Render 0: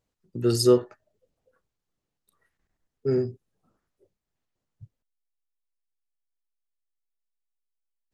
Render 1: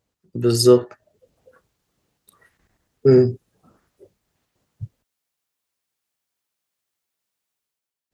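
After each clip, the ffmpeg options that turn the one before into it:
-filter_complex "[0:a]asplit=2[a][b];[b]acompressor=threshold=-30dB:ratio=6,volume=-2.5dB[c];[a][c]amix=inputs=2:normalize=0,highpass=43,dynaudnorm=f=110:g=9:m=10dB"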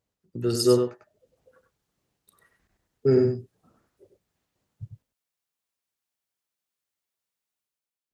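-af "aecho=1:1:98:0.473,volume=-7dB"

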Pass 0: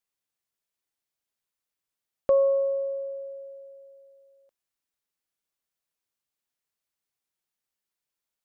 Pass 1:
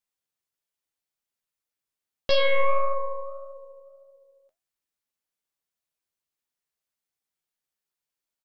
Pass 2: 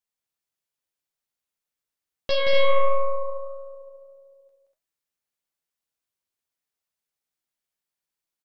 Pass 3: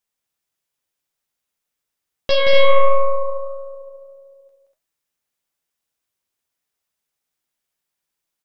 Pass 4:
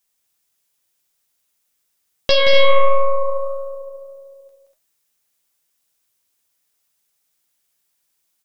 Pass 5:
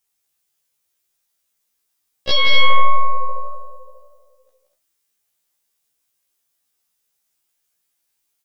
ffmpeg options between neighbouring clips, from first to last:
-filter_complex "[0:a]asplit=2[a][b];[b]adelay=13,volume=-11dB[c];[a][c]amix=inputs=2:normalize=0,aeval=exprs='0.224*(cos(1*acos(clip(val(0)/0.224,-1,1)))-cos(1*PI/2))+0.0224*(cos(5*acos(clip(val(0)/0.224,-1,1)))-cos(5*PI/2))+0.112*(cos(8*acos(clip(val(0)/0.224,-1,1)))-cos(8*PI/2))':c=same,flanger=delay=6.6:depth=7.3:regen=71:speed=1.7:shape=triangular,volume=-1dB"
-af "aecho=1:1:174.9|242:0.631|0.501,volume=-2dB"
-af "bandreject=f=4.3k:w=26,volume=6.5dB"
-filter_complex "[0:a]highshelf=f=3.9k:g=8.5,asplit=2[a][b];[b]acompressor=threshold=-18dB:ratio=6,volume=2dB[c];[a][c]amix=inputs=2:normalize=0,volume=-3dB"
-af "afftfilt=real='re*1.73*eq(mod(b,3),0)':imag='im*1.73*eq(mod(b,3),0)':win_size=2048:overlap=0.75"

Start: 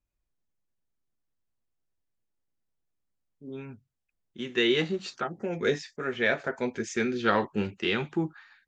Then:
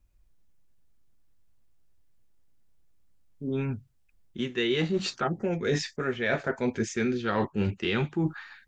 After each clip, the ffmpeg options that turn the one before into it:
-af "lowshelf=f=130:g=12,areverse,acompressor=threshold=-33dB:ratio=6,areverse,volume=8.5dB"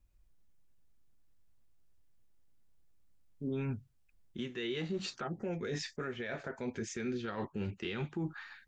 -af "alimiter=level_in=1dB:limit=-24dB:level=0:latency=1:release=164,volume=-1dB,volume=-3.5dB"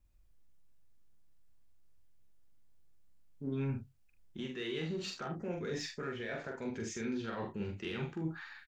-filter_complex "[0:a]asplit=2[a][b];[b]asoftclip=type=tanh:threshold=-39dB,volume=-9dB[c];[a][c]amix=inputs=2:normalize=0,aecho=1:1:44|75:0.668|0.251,volume=-4dB"

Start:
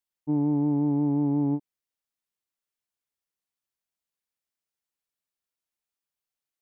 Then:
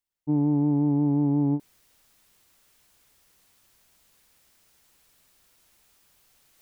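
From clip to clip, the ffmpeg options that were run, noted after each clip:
-af "areverse,acompressor=mode=upward:threshold=-41dB:ratio=2.5,areverse,lowshelf=f=110:g=9"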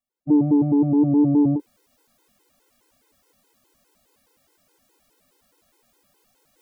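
-af "equalizer=f=250:t=o:w=1:g=10,equalizer=f=500:t=o:w=1:g=9,equalizer=f=1k:t=o:w=1:g=4,afftfilt=real='re*gt(sin(2*PI*4.8*pts/sr)*(1-2*mod(floor(b*sr/1024/270),2)),0)':imag='im*gt(sin(2*PI*4.8*pts/sr)*(1-2*mod(floor(b*sr/1024/270),2)),0)':win_size=1024:overlap=0.75"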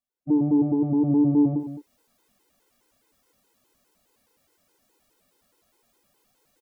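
-af "aecho=1:1:76|215:0.251|0.266,volume=-4dB"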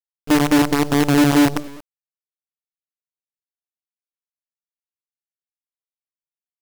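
-af "acrusher=bits=4:dc=4:mix=0:aa=0.000001,volume=4dB"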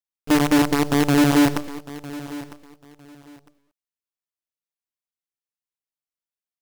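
-af "aecho=1:1:954|1908:0.141|0.0311,volume=-2dB"

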